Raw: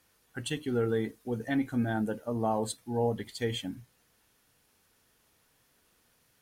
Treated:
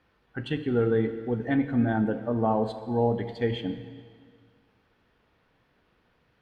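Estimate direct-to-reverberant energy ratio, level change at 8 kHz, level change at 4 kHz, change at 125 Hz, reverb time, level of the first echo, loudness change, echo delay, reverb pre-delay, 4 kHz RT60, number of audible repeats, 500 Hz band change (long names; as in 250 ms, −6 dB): 9.5 dB, below −20 dB, −2.0 dB, +5.5 dB, 2.0 s, no echo audible, +5.0 dB, no echo audible, 5 ms, 1.9 s, no echo audible, +5.0 dB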